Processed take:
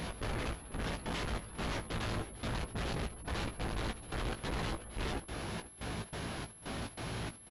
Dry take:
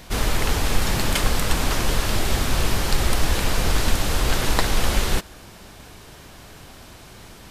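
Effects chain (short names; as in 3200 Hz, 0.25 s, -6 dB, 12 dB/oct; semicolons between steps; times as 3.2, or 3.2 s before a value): spectral gate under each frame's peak -30 dB strong; HPF 150 Hz 6 dB/oct; low shelf 230 Hz +9.5 dB; in parallel at +1 dB: compressor, threshold -32 dBFS, peak gain reduction 16 dB; on the sum: soft clip -18 dBFS, distortion -13 dB; step gate "x.xxx..x" 142 bpm -24 dB; overloaded stage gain 33 dB; doubler 18 ms -6.5 dB; echo 0.492 s -15 dB; pulse-width modulation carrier 11000 Hz; gain -3 dB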